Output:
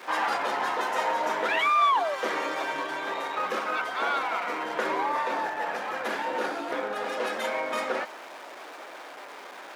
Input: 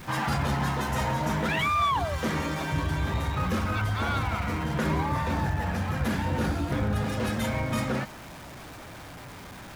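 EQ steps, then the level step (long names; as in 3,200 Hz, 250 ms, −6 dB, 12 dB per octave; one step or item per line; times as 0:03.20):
high-pass filter 390 Hz 24 dB per octave
low-pass filter 3,100 Hz 6 dB per octave
+4.0 dB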